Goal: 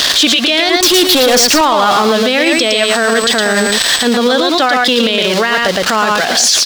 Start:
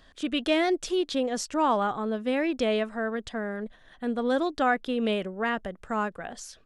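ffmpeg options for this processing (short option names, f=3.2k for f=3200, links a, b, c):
-filter_complex "[0:a]aeval=exprs='val(0)+0.5*0.0126*sgn(val(0))':c=same,highpass=f=410:p=1,equalizer=f=4.4k:t=o:w=1.5:g=14.5,acompressor=threshold=-24dB:ratio=6,asettb=1/sr,asplit=3[a][b][c];[a]atrim=end=0.694[d];[b]atrim=start=0.69:end=1.61,asetpts=PTS-STARTPTS,afade=t=in:d=0.004:c=qsin,afade=t=out:st=0.916:d=0.004:c=qsin,volume=35dB,asoftclip=hard,volume=-35dB[e];[c]atrim=start=1.606[f];[d][e]acrossfade=d=0.004:c1=hsin:c2=qsin[g];[g][f]acrossfade=d=0.004:c1=qsin:c2=hsin,asettb=1/sr,asplit=3[h][i][j];[h]atrim=end=2.444[k];[i]atrim=start=2.44:end=4.05,asetpts=PTS-STARTPTS,afade=t=in:d=0.004:c=qsin,afade=t=out:st=1.606:d=0.004:c=qsin,aeval=exprs='val(0)+0.00398*sin(2*PI*8000*n/s)':c=same[l];[j]atrim=start=4.046[m];[k][l]acrossfade=d=0.004:c1=hsin:c2=qsin[n];[n][m]acrossfade=d=0.004:c1=qsin:c2=hsin,aecho=1:1:113:0.531,alimiter=level_in=27.5dB:limit=-1dB:release=50:level=0:latency=1,volume=-1dB"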